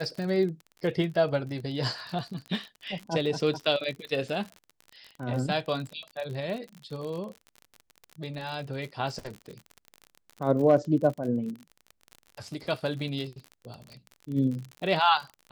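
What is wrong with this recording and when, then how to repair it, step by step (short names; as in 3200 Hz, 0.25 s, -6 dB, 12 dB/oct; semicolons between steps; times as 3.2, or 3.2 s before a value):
crackle 46/s -34 dBFS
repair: de-click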